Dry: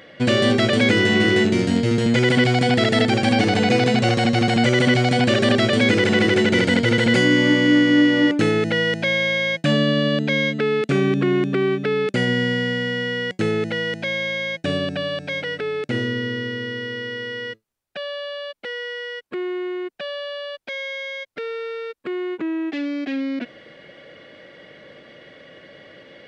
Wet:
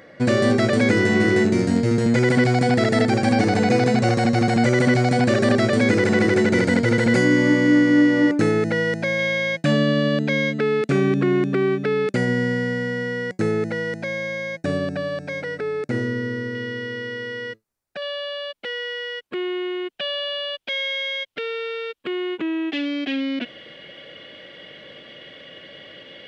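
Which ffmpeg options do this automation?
-af "asetnsamples=n=441:p=0,asendcmd='9.19 equalizer g -6;12.17 equalizer g -14.5;16.55 equalizer g -5.5;18.02 equalizer g 4;19.35 equalizer g 10.5',equalizer=f=3.1k:t=o:w=0.62:g=-12.5"

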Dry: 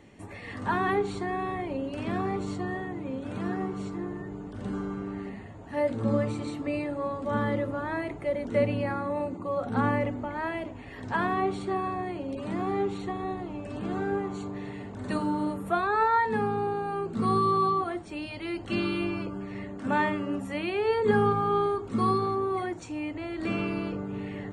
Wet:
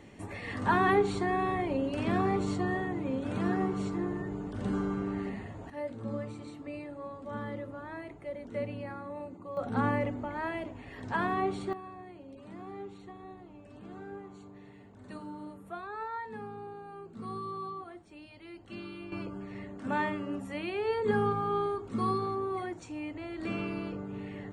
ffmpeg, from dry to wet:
-af "asetnsamples=n=441:p=0,asendcmd='5.7 volume volume -10.5dB;9.57 volume volume -3dB;11.73 volume volume -14.5dB;19.12 volume volume -5dB',volume=1.5dB"

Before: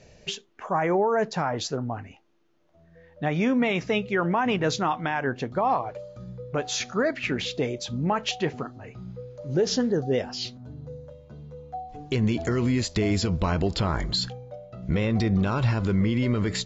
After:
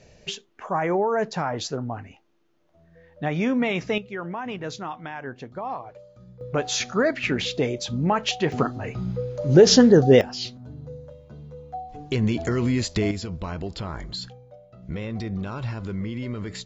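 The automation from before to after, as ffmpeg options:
-af "asetnsamples=n=441:p=0,asendcmd='3.98 volume volume -8dB;6.41 volume volume 3dB;8.52 volume volume 10.5dB;10.21 volume volume 1dB;13.11 volume volume -7dB',volume=0dB"

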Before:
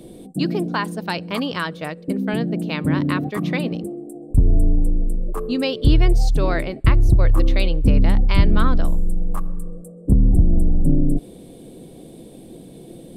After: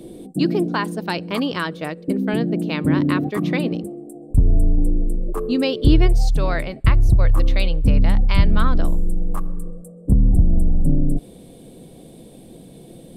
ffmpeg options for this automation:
-af "asetnsamples=n=441:p=0,asendcmd='3.81 equalizer g -2.5;4.78 equalizer g 5;6.07 equalizer g -6.5;8.75 equalizer g 3.5;9.71 equalizer g -4.5',equalizer=f=340:t=o:w=0.75:g=4.5"

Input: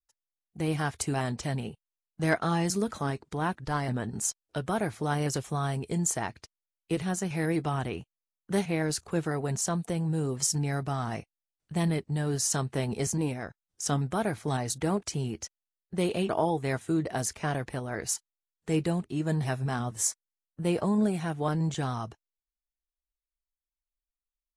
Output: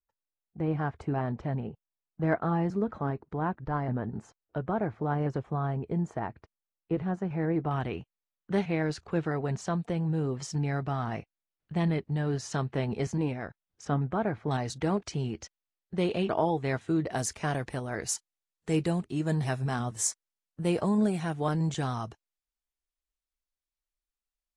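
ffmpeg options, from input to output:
-af "asetnsamples=n=441:p=0,asendcmd='7.71 lowpass f 3200;13.85 lowpass f 1800;14.51 lowpass f 4500;17.11 lowpass f 10000',lowpass=1.3k"

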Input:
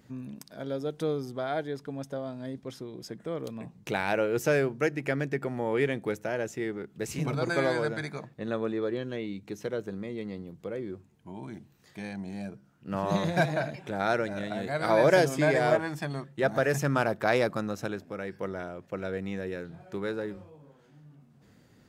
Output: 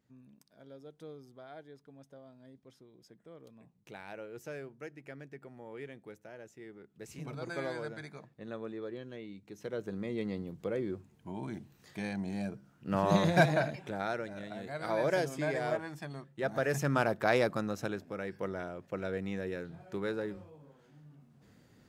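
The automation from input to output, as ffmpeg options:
-af "volume=7.5dB,afade=t=in:st=6.53:d=1.06:silence=0.421697,afade=t=in:st=9.53:d=0.68:silence=0.266073,afade=t=out:st=13.5:d=0.62:silence=0.316228,afade=t=in:st=16.32:d=0.68:silence=0.473151"

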